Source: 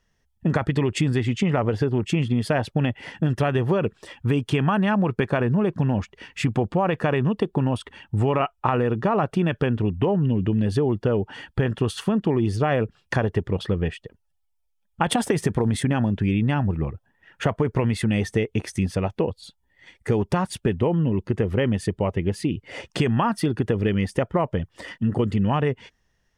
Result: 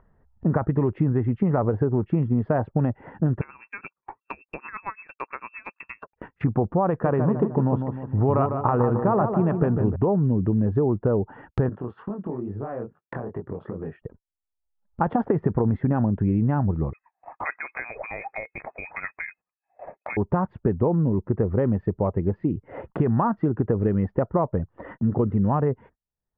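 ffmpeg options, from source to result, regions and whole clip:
ffmpeg -i in.wav -filter_complex "[0:a]asettb=1/sr,asplit=3[link_01][link_02][link_03];[link_01]atrim=end=3.414[link_04];[link_02]atrim=start=3.41:end=6.16,asetpts=PTS-STARTPTS,afade=type=in:duration=0.004:curve=qsin,afade=type=out:start_time=2.746:duration=0.004:curve=qsin,acompressor=mode=upward:threshold=-35dB:ratio=2.5:attack=3.2:release=140:knee=2.83:detection=peak,lowpass=frequency=2400:width_type=q:width=0.5098,lowpass=frequency=2400:width_type=q:width=0.6013,lowpass=frequency=2400:width_type=q:width=0.9,lowpass=frequency=2400:width_type=q:width=2.563,afreqshift=-2800,aeval=exprs='val(0)*pow(10,-20*(0.5-0.5*cos(2*PI*8.8*n/s))/20)':channel_layout=same[link_05];[link_03]atrim=start=6.156[link_06];[link_04][link_05]acrossfade=duration=0.004:curve1=hsin:curve2=qsin[link_07];[link_07][link_06]acrossfade=duration=0.004:curve1=qsin:curve2=hsin,asettb=1/sr,asplit=3[link_08][link_09][link_10];[link_08]atrim=end=6.904[link_11];[link_09]atrim=start=6.9:end=9.96,asetpts=PTS-STARTPTS,afade=type=in:duration=0.004:curve=qsin,afade=type=out:start_time=3.056:duration=0.004:curve=qsin,equalizer=frequency=5900:width=0.63:gain=4,asplit=2[link_12][link_13];[link_13]adelay=152,lowpass=frequency=1900:poles=1,volume=-6dB,asplit=2[link_14][link_15];[link_15]adelay=152,lowpass=frequency=1900:poles=1,volume=0.5,asplit=2[link_16][link_17];[link_17]adelay=152,lowpass=frequency=1900:poles=1,volume=0.5,asplit=2[link_18][link_19];[link_19]adelay=152,lowpass=frequency=1900:poles=1,volume=0.5,asplit=2[link_20][link_21];[link_21]adelay=152,lowpass=frequency=1900:poles=1,volume=0.5,asplit=2[link_22][link_23];[link_23]adelay=152,lowpass=frequency=1900:poles=1,volume=0.5[link_24];[link_12][link_14][link_16][link_18][link_20][link_22][link_24]amix=inputs=7:normalize=0,atrim=end_sample=134946[link_25];[link_10]atrim=start=9.956[link_26];[link_11][link_25]acrossfade=duration=0.004:curve1=hsin:curve2=qsin[link_27];[link_27][link_26]acrossfade=duration=0.004:curve1=qsin:curve2=hsin,asettb=1/sr,asplit=3[link_28][link_29][link_30];[link_28]atrim=end=11.694[link_31];[link_29]atrim=start=11.69:end=14.02,asetpts=PTS-STARTPTS,afade=type=in:duration=0.004:curve=qsin,afade=type=out:start_time=2.326:duration=0.004:curve=qsin,highpass=150,acompressor=threshold=-23dB:ratio=6:attack=3.2:release=140:knee=1:detection=peak,flanger=delay=19.5:depth=5.7:speed=2.3[link_32];[link_30]atrim=start=14.016[link_33];[link_31][link_32]acrossfade=duration=0.004:curve1=hsin:curve2=qsin[link_34];[link_34][link_33]acrossfade=duration=0.004:curve1=qsin:curve2=hsin,asettb=1/sr,asplit=3[link_35][link_36][link_37];[link_35]atrim=end=16.934[link_38];[link_36]atrim=start=16.93:end=20.17,asetpts=PTS-STARTPTS,afade=type=in:duration=0.004:curve=qsin,afade=type=out:start_time=3.236:duration=0.004:curve=qsin,equalizer=frequency=680:width=1.4:gain=9,acompressor=mode=upward:threshold=-40dB:ratio=2.5:attack=3.2:release=140:knee=2.83:detection=peak,lowpass=frequency=2200:width_type=q:width=0.5098,lowpass=frequency=2200:width_type=q:width=0.6013,lowpass=frequency=2200:width_type=q:width=0.9,lowpass=frequency=2200:width_type=q:width=2.563,afreqshift=-2600[link_39];[link_37]atrim=start=20.166[link_40];[link_38][link_39]acrossfade=duration=0.004:curve1=hsin:curve2=qsin[link_41];[link_41][link_40]acrossfade=duration=0.004:curve1=qsin:curve2=hsin,lowpass=frequency=1300:width=0.5412,lowpass=frequency=1300:width=1.3066,agate=range=-33dB:threshold=-48dB:ratio=16:detection=peak,acompressor=mode=upward:threshold=-28dB:ratio=2.5" out.wav

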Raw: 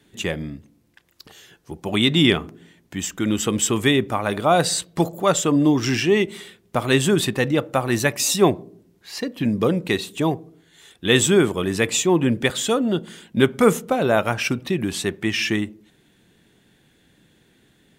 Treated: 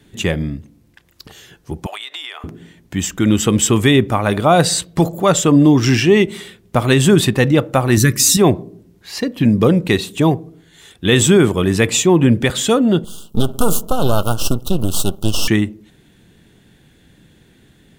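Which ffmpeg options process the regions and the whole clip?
ffmpeg -i in.wav -filter_complex "[0:a]asettb=1/sr,asplit=3[link_01][link_02][link_03];[link_01]atrim=end=1.864[link_04];[link_02]atrim=start=1.86:end=2.44,asetpts=PTS-STARTPTS,afade=type=in:duration=0.004:curve=qsin,afade=type=out:start_time=0.576:duration=0.004:curve=qsin,highpass=frequency=700:width=0.5412,highpass=frequency=700:width=1.3066,acompressor=threshold=-30dB:ratio=20:attack=3.2:release=140:knee=1:detection=peak[link_05];[link_03]atrim=start=2.436[link_06];[link_04][link_05]acrossfade=duration=0.004:curve1=hsin:curve2=qsin[link_07];[link_07][link_06]acrossfade=duration=0.004:curve1=qsin:curve2=hsin,asettb=1/sr,asplit=3[link_08][link_09][link_10];[link_08]atrim=end=7.974[link_11];[link_09]atrim=start=7.97:end=8.37,asetpts=PTS-STARTPTS,afade=type=in:duration=0.004:curve=qsin,afade=type=out:start_time=0.396:duration=0.004:curve=qsin,asuperstop=centerf=720:order=4:qfactor=0.67,equalizer=frequency=2700:width=1.5:gain=-10.5,acontrast=36[link_12];[link_10]atrim=start=8.366[link_13];[link_11][link_12]acrossfade=duration=0.004:curve1=hsin:curve2=qsin[link_14];[link_14][link_13]acrossfade=duration=0.004:curve1=qsin:curve2=hsin,asettb=1/sr,asplit=3[link_15][link_16][link_17];[link_15]atrim=end=13.044[link_18];[link_16]atrim=start=13.04:end=15.48,asetpts=PTS-STARTPTS,afade=type=in:duration=0.004:curve=qsin,afade=type=out:start_time=2.436:duration=0.004:curve=qsin,aemphasis=mode=production:type=50fm,aeval=exprs='max(val(0),0)':channel_layout=same,asuperstop=centerf=2000:order=12:qfactor=1.5[link_19];[link_17]atrim=start=15.476[link_20];[link_18][link_19]acrossfade=duration=0.004:curve1=hsin:curve2=qsin[link_21];[link_21][link_20]acrossfade=duration=0.004:curve1=qsin:curve2=hsin,lowshelf=frequency=150:gain=9.5,alimiter=level_in=6dB:limit=-1dB:release=50:level=0:latency=1,volume=-1dB" out.wav

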